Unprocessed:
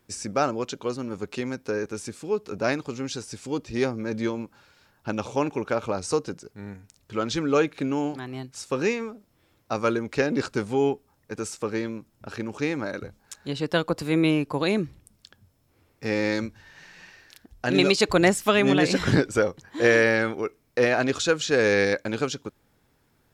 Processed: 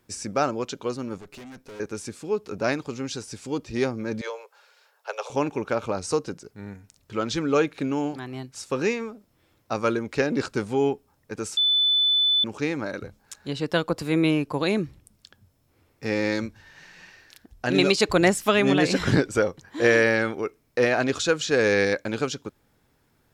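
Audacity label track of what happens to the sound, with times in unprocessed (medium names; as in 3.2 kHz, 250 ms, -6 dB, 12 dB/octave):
1.180000	1.800000	valve stage drive 40 dB, bias 0.6
4.210000	5.300000	steep high-pass 410 Hz 96 dB/octave
11.570000	12.440000	bleep 3.5 kHz -17.5 dBFS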